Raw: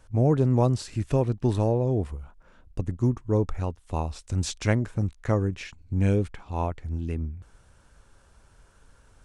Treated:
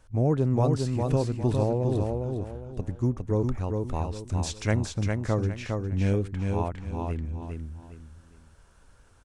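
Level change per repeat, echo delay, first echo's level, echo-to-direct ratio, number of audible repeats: -10.0 dB, 0.407 s, -4.0 dB, -3.5 dB, 3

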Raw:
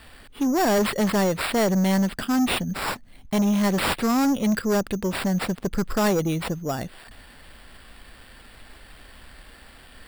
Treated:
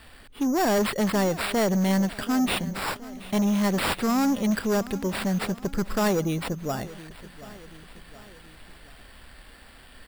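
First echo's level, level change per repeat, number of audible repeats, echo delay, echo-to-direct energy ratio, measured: -17.5 dB, -5.5 dB, 3, 0.727 s, -16.0 dB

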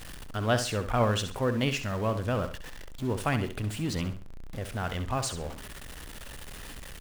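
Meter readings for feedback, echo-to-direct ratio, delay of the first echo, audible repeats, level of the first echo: 29%, -9.5 dB, 66 ms, 3, -10.0 dB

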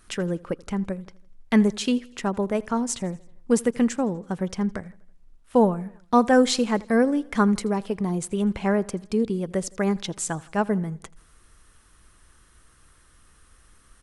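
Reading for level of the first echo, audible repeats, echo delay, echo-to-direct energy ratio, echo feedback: -23.0 dB, 3, 82 ms, -21.5 dB, 54%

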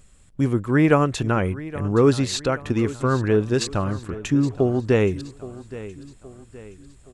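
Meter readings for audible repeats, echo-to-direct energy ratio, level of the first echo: 3, -15.5 dB, -16.5 dB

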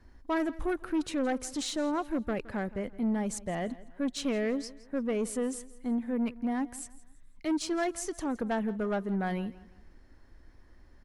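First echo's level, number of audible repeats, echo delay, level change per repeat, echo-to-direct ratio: -19.0 dB, 2, 0.167 s, -9.0 dB, -18.5 dB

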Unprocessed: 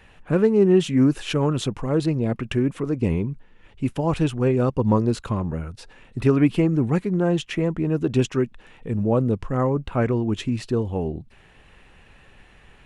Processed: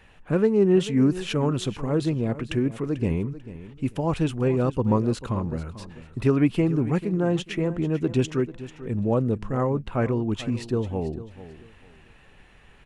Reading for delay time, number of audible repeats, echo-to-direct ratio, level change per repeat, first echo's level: 0.442 s, 2, -14.5 dB, -12.0 dB, -15.0 dB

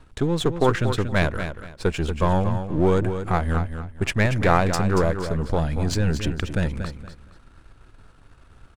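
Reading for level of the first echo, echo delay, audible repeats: -9.0 dB, 0.233 s, 3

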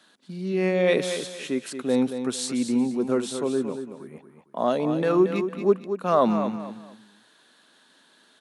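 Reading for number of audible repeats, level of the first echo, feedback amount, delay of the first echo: 3, -9.0 dB, 29%, 0.228 s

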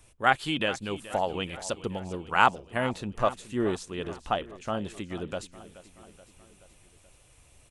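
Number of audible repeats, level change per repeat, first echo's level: 4, -4.5 dB, -16.5 dB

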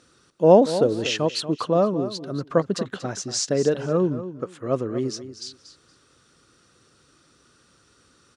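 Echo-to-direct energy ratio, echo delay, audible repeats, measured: -12.5 dB, 0.235 s, 2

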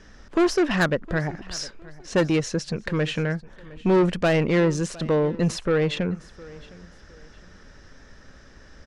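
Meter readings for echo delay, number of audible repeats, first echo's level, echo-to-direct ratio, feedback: 0.711 s, 2, -21.0 dB, -20.5 dB, 30%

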